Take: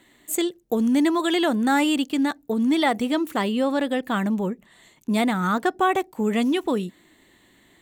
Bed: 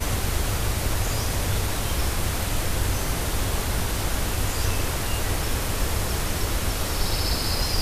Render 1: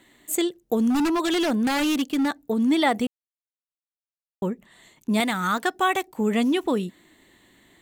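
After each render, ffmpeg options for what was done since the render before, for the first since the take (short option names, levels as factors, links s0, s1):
-filter_complex "[0:a]asettb=1/sr,asplit=3[s0][s1][s2];[s0]atrim=end=0.904[s3];[s1]atrim=start=0.9:end=2.41,asetpts=PTS-STARTPTS,afade=t=in:d=0.004:c=qsin,afade=t=out:st=1.506:d=0.004:c=qsin,aeval=exprs='0.133*(abs(mod(val(0)/0.133+3,4)-2)-1)':c=same[s4];[s2]atrim=start=2.406[s5];[s3][s4]acrossfade=d=0.004:c1=hsin:c2=qsin[s6];[s6][s5]acrossfade=d=0.004:c1=qsin:c2=hsin,asettb=1/sr,asplit=3[s7][s8][s9];[s7]atrim=end=5.204[s10];[s8]atrim=start=5.2:end=6.08,asetpts=PTS-STARTPTS,afade=t=in:d=0.004:c=qsin,afade=t=out:st=0.876:d=0.004:c=qsin,tiltshelf=f=1200:g=-5.5[s11];[s9]atrim=start=6.076[s12];[s10][s11]acrossfade=d=0.004:c1=hsin:c2=qsin[s13];[s13][s12]acrossfade=d=0.004:c1=qsin:c2=hsin,asplit=3[s14][s15][s16];[s14]atrim=end=3.07,asetpts=PTS-STARTPTS,afade=t=out:st=3.066:d=0.004:c=hsin[s17];[s15]atrim=start=3.07:end=4.42,asetpts=PTS-STARTPTS,volume=0[s18];[s16]atrim=start=4.42,asetpts=PTS-STARTPTS,afade=t=in:d=0.004:c=hsin[s19];[s17][s18][s19]concat=n=3:v=0:a=1"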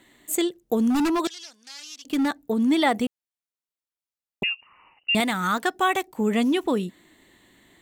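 -filter_complex "[0:a]asettb=1/sr,asplit=3[s0][s1][s2];[s0]atrim=end=1.274[s3];[s1]atrim=start=1.27:end=2.05,asetpts=PTS-STARTPTS,afade=t=in:d=0.004:c=qsin,afade=t=out:st=0.776:d=0.004:c=qsin,bandpass=f=5500:t=q:w=3.6[s4];[s2]atrim=start=2.046[s5];[s3][s4]acrossfade=d=0.004:c1=hsin:c2=qsin[s6];[s6][s5]acrossfade=d=0.004:c1=qsin:c2=hsin,asettb=1/sr,asplit=3[s7][s8][s9];[s7]atrim=end=4.434[s10];[s8]atrim=start=4.43:end=5.15,asetpts=PTS-STARTPTS,afade=t=in:d=0.004:c=qsin,afade=t=out:st=0.716:d=0.004:c=qsin,lowpass=f=2600:t=q:w=0.5098,lowpass=f=2600:t=q:w=0.6013,lowpass=f=2600:t=q:w=0.9,lowpass=f=2600:t=q:w=2.563,afreqshift=-3000[s11];[s9]atrim=start=5.146[s12];[s10][s11]acrossfade=d=0.004:c1=hsin:c2=qsin[s13];[s13][s12]acrossfade=d=0.004:c1=qsin:c2=hsin"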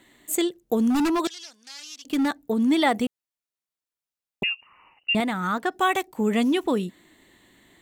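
-filter_complex "[0:a]asettb=1/sr,asplit=3[s0][s1][s2];[s0]atrim=end=5.134[s3];[s1]atrim=start=5.13:end=5.72,asetpts=PTS-STARTPTS,afade=t=in:d=0.004:c=qsin,afade=t=out:st=0.586:d=0.004:c=qsin,highshelf=f=2400:g=-10.5[s4];[s2]atrim=start=5.716[s5];[s3][s4]acrossfade=d=0.004:c1=hsin:c2=qsin[s6];[s6][s5]acrossfade=d=0.004:c1=qsin:c2=hsin"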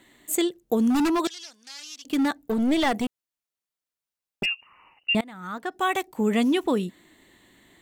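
-filter_complex "[0:a]asettb=1/sr,asplit=3[s0][s1][s2];[s0]atrim=end=2.394[s3];[s1]atrim=start=2.39:end=4.46,asetpts=PTS-STARTPTS,afade=t=in:d=0.004:c=qsin,afade=t=out:st=2.066:d=0.004:c=qsin,aeval=exprs='clip(val(0),-1,0.0708)':c=same[s4];[s2]atrim=start=4.456[s5];[s3][s4]acrossfade=d=0.004:c1=hsin:c2=qsin[s6];[s6][s5]acrossfade=d=0.004:c1=qsin:c2=hsin,asplit=2[s7][s8];[s7]atrim=end=5.21,asetpts=PTS-STARTPTS,afade=t=out:st=5.206:d=0.004:c=hsin:silence=0.0707946[s9];[s8]atrim=start=5.21,asetpts=PTS-STARTPTS,afade=t=in:d=0.91:silence=0.0707946[s10];[s9][s10]concat=n=2:v=0:a=1"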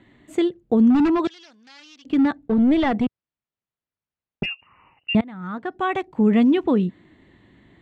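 -af "lowpass=2800,equalizer=f=100:t=o:w=2.7:g=12"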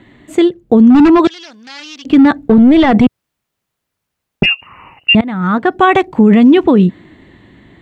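-af "dynaudnorm=f=260:g=13:m=3.76,alimiter=level_in=3.35:limit=0.891:release=50:level=0:latency=1"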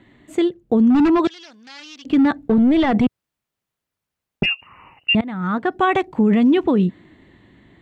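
-af "volume=0.398"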